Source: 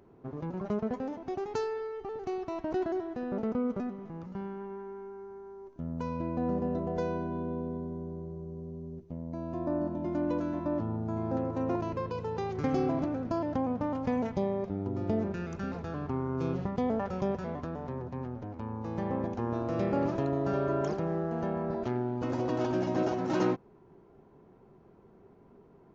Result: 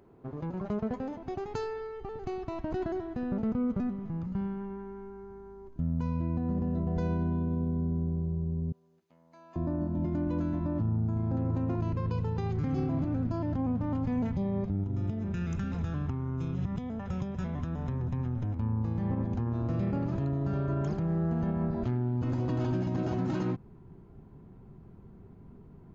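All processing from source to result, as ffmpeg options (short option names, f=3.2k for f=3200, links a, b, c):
-filter_complex "[0:a]asettb=1/sr,asplit=3[a][b][c];[a]atrim=end=8.724[d];[b]atrim=start=8.72:end=9.56,asetpts=PTS-STARTPTS,afade=t=in:d=0.004:c=qsin,afade=t=out:st=0.836:d=0.004:c=qsin,highpass=1.3k,asplit=2[e][f];[f]adelay=30,volume=-13dB[g];[e][g]amix=inputs=2:normalize=0,atrim=end_sample=37044[h];[c]atrim=start=9.556[i];[d][h]acrossfade=d=0.004:c1=hsin:c2=qsin[j];[j][i]acrossfade=d=0.004:c1=qsin:c2=hsin,asettb=1/sr,asplit=3[k][l][m];[k]atrim=end=14.834[n];[l]atrim=start=14.83:end=18.55,asetpts=PTS-STARTPTS,afade=t=in:d=0.004:c=qsin,afade=t=out:st=3.716:d=0.004:c=qsin,asuperstop=centerf=4500:order=4:qfactor=6.2,highshelf=f=2.2k:g=10,acompressor=threshold=-35dB:ratio=16:attack=3.2:release=140:knee=1:detection=peak[o];[m]atrim=start=18.546[p];[n][o]acrossfade=d=0.004:c1=hsin:c2=qsin[q];[q][p]acrossfade=d=0.004:c1=qsin:c2=hsin,bandreject=f=5.7k:w=8.7,asubboost=boost=5.5:cutoff=190,alimiter=limit=-22.5dB:level=0:latency=1:release=84"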